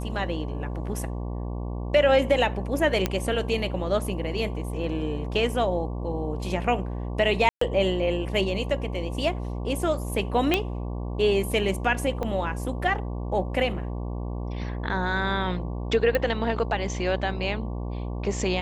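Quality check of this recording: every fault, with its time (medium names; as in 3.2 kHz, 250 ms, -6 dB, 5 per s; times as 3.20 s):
buzz 60 Hz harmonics 19 -31 dBFS
3.06 s: pop -9 dBFS
7.49–7.61 s: dropout 124 ms
10.54 s: pop -8 dBFS
12.23 s: dropout 2.3 ms
16.15 s: pop -12 dBFS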